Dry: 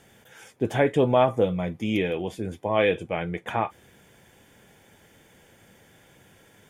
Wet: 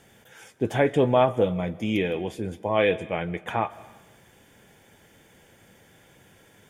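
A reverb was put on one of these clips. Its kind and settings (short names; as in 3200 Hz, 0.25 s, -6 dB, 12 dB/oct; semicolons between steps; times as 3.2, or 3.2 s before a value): digital reverb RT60 1.1 s, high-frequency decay 0.85×, pre-delay 0.1 s, DRR 19 dB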